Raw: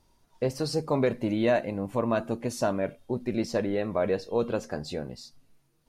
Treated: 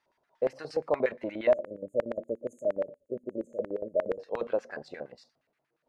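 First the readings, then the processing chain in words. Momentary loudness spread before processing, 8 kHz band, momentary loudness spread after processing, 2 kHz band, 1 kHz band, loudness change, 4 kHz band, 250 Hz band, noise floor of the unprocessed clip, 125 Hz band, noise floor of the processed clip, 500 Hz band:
9 LU, under -15 dB, 12 LU, -5.0 dB, -7.0 dB, -3.5 dB, under -10 dB, -10.5 dB, -68 dBFS, -17.5 dB, -80 dBFS, -1.5 dB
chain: spectral delete 1.51–4.2, 630–6300 Hz; LFO band-pass square 8.5 Hz 600–1800 Hz; gain +4 dB

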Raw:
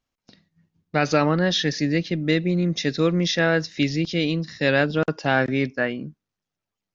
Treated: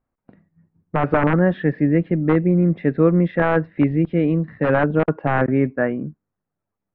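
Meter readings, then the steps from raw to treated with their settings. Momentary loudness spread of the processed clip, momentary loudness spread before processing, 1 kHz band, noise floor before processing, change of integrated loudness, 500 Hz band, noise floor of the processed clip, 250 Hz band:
6 LU, 5 LU, +3.5 dB, under -85 dBFS, +3.0 dB, +3.5 dB, -83 dBFS, +5.0 dB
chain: wrapped overs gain 9.5 dB; Bessel low-pass 1200 Hz, order 6; gain +5.5 dB

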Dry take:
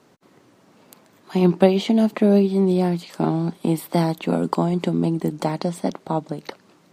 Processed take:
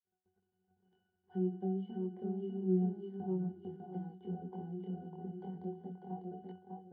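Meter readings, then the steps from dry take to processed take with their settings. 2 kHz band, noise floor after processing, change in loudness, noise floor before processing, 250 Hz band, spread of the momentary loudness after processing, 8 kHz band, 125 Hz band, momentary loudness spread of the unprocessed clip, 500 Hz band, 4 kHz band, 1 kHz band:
under -30 dB, -84 dBFS, -19.0 dB, -56 dBFS, -18.0 dB, 13 LU, under -35 dB, -17.0 dB, 10 LU, -19.5 dB, under -30 dB, -22.0 dB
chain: block floating point 5-bit; notches 50/100/150/200/250/300/350 Hz; dynamic EQ 1400 Hz, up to -5 dB, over -39 dBFS, Q 0.89; compressor 6:1, threshold -26 dBFS, peak gain reduction 15.5 dB; notch comb 1400 Hz; chorus 0.29 Hz, delay 19 ms, depth 6.8 ms; crossover distortion -55.5 dBFS; tape spacing loss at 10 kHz 27 dB; octave resonator F#, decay 0.34 s; on a send: tape echo 0.599 s, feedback 24%, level -3 dB, low-pass 4900 Hz; on the sum: gain +6.5 dB

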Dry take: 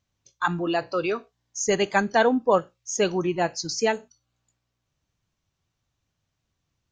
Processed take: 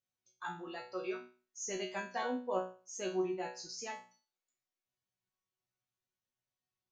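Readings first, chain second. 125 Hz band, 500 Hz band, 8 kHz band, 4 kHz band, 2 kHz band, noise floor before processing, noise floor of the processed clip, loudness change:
-20.0 dB, -15.0 dB, -13.5 dB, -15.0 dB, -16.5 dB, -80 dBFS, under -85 dBFS, -15.5 dB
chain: low shelf 110 Hz -9.5 dB; notches 60/120/180/240 Hz; resonator bank B2 fifth, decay 0.37 s; gain -1 dB

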